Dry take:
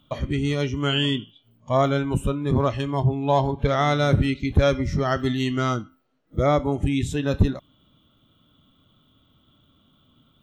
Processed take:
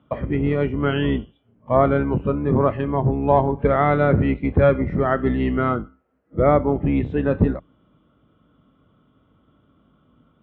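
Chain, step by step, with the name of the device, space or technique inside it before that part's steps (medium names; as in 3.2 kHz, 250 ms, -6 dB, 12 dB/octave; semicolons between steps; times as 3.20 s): sub-octave bass pedal (octave divider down 2 oct, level 0 dB; cabinet simulation 62–2100 Hz, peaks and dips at 77 Hz -7 dB, 120 Hz -5 dB, 470 Hz +4 dB); trim +3 dB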